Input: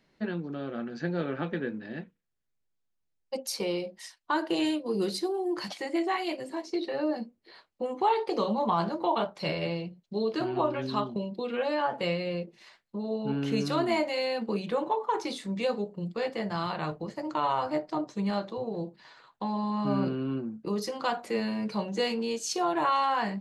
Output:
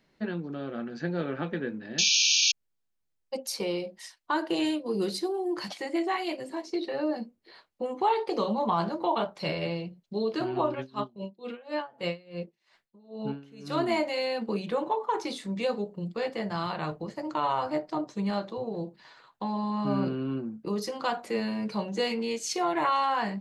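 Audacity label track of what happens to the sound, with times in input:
1.980000	2.520000	painted sound noise 2.3–6.7 kHz -23 dBFS
10.740000	13.770000	logarithmic tremolo 5 Hz -> 1.7 Hz, depth 24 dB
22.110000	22.870000	peaking EQ 2.1 kHz +12.5 dB 0.23 oct

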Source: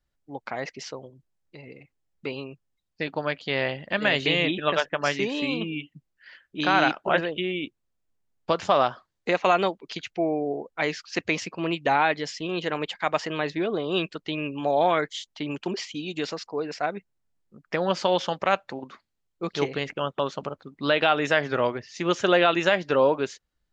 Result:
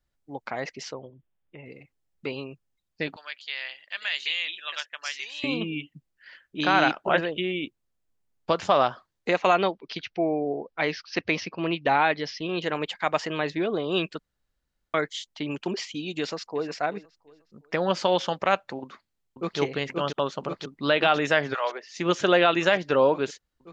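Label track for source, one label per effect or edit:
0.930000	1.660000	brick-wall FIR low-pass 3.7 kHz
3.160000	5.440000	Bessel high-pass 2.8 kHz
9.570000	12.620000	steep low-pass 5.9 kHz 72 dB/octave
14.190000	14.940000	room tone
16.190000	16.690000	echo throw 360 ms, feedback 35%, level -17 dB
18.830000	19.590000	echo throw 530 ms, feedback 80%, level -3.5 dB
21.530000	21.930000	high-pass 930 Hz -> 240 Hz 24 dB/octave

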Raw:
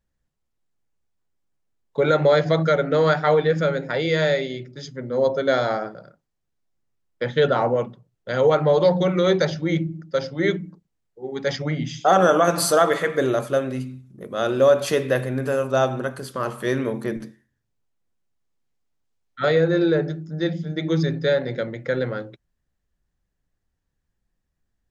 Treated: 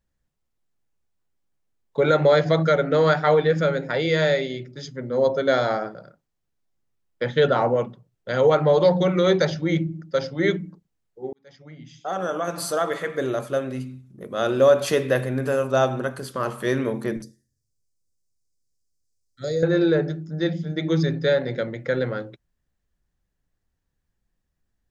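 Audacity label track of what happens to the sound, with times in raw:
11.330000	14.520000	fade in
17.220000	19.630000	FFT filter 110 Hz 0 dB, 180 Hz -7 dB, 550 Hz -6 dB, 920 Hz -27 dB, 1.8 kHz -17 dB, 2.9 kHz -21 dB, 4.9 kHz +7 dB, 8.3 kHz +8 dB, 13 kHz +2 dB

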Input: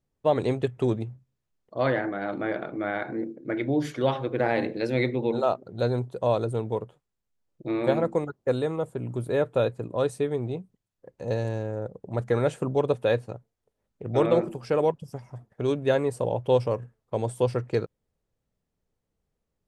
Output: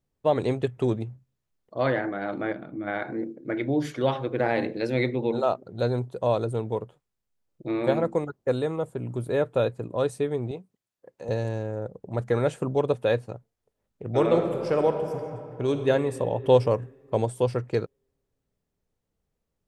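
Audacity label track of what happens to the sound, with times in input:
2.530000	2.870000	time-frequency box 340–8500 Hz -10 dB
10.510000	11.290000	high-pass 360 Hz 6 dB/octave
14.120000	15.890000	reverb throw, RT60 2.6 s, DRR 5.5 dB
16.440000	17.250000	gain +3.5 dB

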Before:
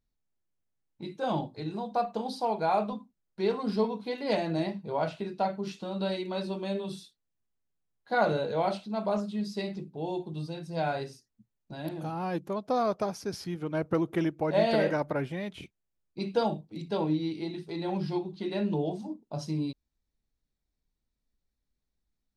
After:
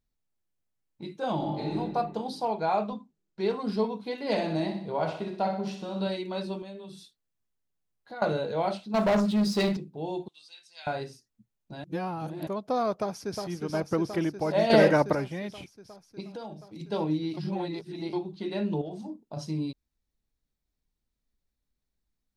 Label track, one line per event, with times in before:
1.350000	1.760000	reverb throw, RT60 1.5 s, DRR -3 dB
2.480000	3.410000	steep low-pass 8.4 kHz 96 dB/octave
4.160000	6.070000	feedback delay 62 ms, feedback 52%, level -7.5 dB
6.620000	8.220000	compression 2.5:1, threshold -44 dBFS
8.940000	9.770000	waveshaping leveller passes 3
10.280000	10.870000	Butterworth band-pass 4.8 kHz, Q 0.68
11.840000	12.470000	reverse
13.000000	13.440000	echo throw 360 ms, feedback 80%, level -5 dB
14.700000	15.150000	gain +7 dB
16.200000	16.800000	compression 3:1, threshold -40 dBFS
17.370000	18.130000	reverse
18.810000	19.370000	compression, threshold -33 dBFS

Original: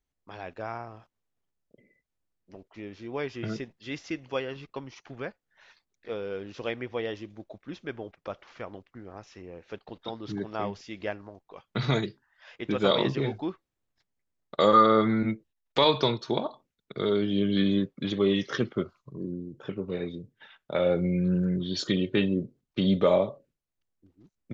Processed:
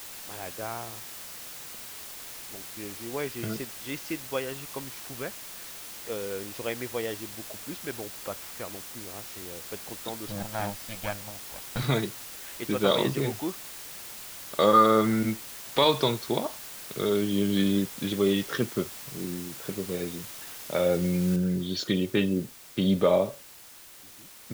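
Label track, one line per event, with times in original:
10.270000	11.830000	comb filter that takes the minimum delay 1.3 ms
21.360000	21.360000	noise floor step -42 dB -49 dB

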